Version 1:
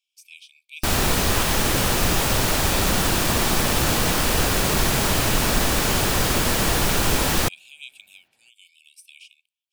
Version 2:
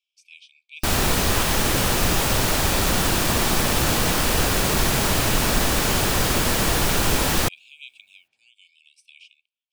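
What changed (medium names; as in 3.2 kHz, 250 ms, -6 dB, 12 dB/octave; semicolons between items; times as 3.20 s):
speech: add distance through air 98 m; second sound -11.0 dB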